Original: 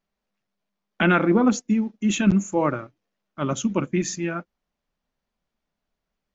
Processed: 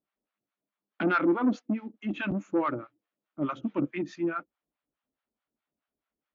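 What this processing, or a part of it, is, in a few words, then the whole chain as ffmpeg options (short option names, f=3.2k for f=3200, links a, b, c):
guitar amplifier with harmonic tremolo: -filter_complex "[0:a]acrossover=split=700[a][b];[a]aeval=exprs='val(0)*(1-1/2+1/2*cos(2*PI*4.7*n/s))':c=same[c];[b]aeval=exprs='val(0)*(1-1/2-1/2*cos(2*PI*4.7*n/s))':c=same[d];[c][d]amix=inputs=2:normalize=0,asoftclip=type=tanh:threshold=-18.5dB,highpass=85,equalizer=f=100:t=q:w=4:g=-8,equalizer=f=180:t=q:w=4:g=-7,equalizer=f=300:t=q:w=4:g=9,equalizer=f=1.3k:t=q:w=4:g=4,lowpass=f=3.7k:w=0.5412,lowpass=f=3.7k:w=1.3066,volume=-2dB"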